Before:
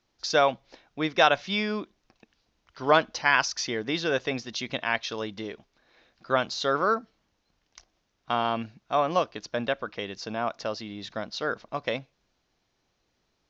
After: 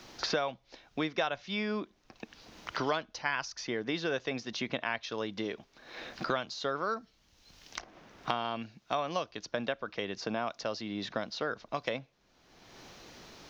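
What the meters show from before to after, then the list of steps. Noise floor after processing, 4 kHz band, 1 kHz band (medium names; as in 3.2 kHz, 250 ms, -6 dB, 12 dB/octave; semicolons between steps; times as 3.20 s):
-68 dBFS, -6.5 dB, -8.5 dB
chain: three bands compressed up and down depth 100%; trim -7 dB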